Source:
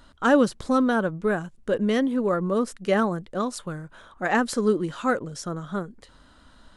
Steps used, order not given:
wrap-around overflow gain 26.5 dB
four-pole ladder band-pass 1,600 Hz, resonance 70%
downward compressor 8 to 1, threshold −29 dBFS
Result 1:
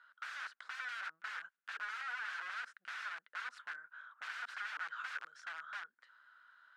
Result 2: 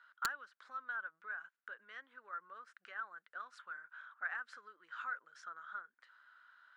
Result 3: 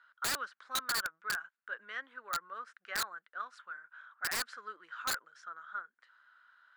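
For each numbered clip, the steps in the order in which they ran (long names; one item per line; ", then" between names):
wrap-around overflow, then downward compressor, then four-pole ladder band-pass
downward compressor, then four-pole ladder band-pass, then wrap-around overflow
four-pole ladder band-pass, then wrap-around overflow, then downward compressor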